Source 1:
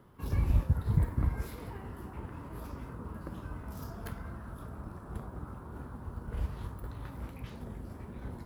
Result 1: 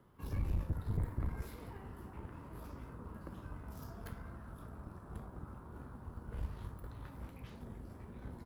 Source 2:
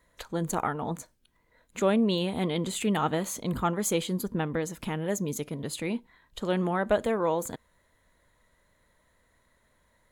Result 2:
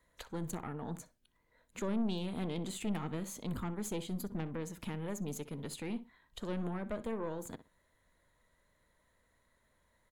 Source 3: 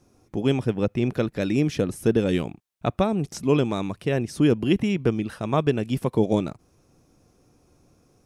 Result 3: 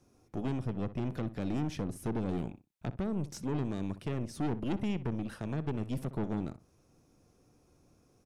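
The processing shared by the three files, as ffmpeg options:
-filter_complex "[0:a]acrossover=split=380[a][b];[b]acompressor=threshold=-37dB:ratio=3[c];[a][c]amix=inputs=2:normalize=0,aeval=exprs='(tanh(17.8*val(0)+0.5)-tanh(0.5))/17.8':c=same,asplit=2[d][e];[e]adelay=62,lowpass=f=2.4k:p=1,volume=-14dB,asplit=2[f][g];[g]adelay=62,lowpass=f=2.4k:p=1,volume=0.19[h];[f][h]amix=inputs=2:normalize=0[i];[d][i]amix=inputs=2:normalize=0,volume=-4dB"

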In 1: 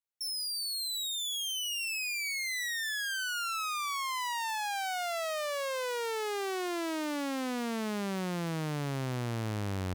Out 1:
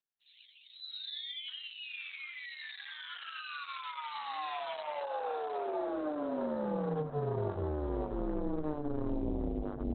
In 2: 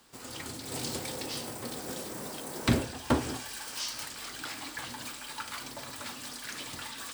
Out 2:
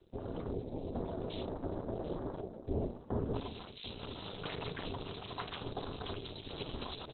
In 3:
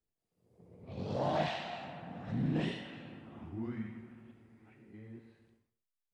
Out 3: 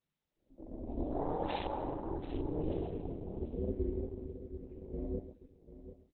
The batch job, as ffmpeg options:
-filter_complex "[0:a]acontrast=61,equalizer=f=1.7k:t=o:w=2:g=-13,bandreject=f=50:t=h:w=6,bandreject=f=100:t=h:w=6,bandreject=f=150:t=h:w=6,bandreject=f=200:t=h:w=6,bandreject=f=250:t=h:w=6,bandreject=f=300:t=h:w=6,areverse,acompressor=threshold=-38dB:ratio=20,areverse,afwtdn=0.00398,aeval=exprs='val(0)*sin(2*PI*150*n/s)':c=same,asplit=2[a][b];[b]aecho=0:1:740:0.224[c];[a][c]amix=inputs=2:normalize=0,volume=10.5dB" -ar 48000 -c:a libopus -b:a 8k

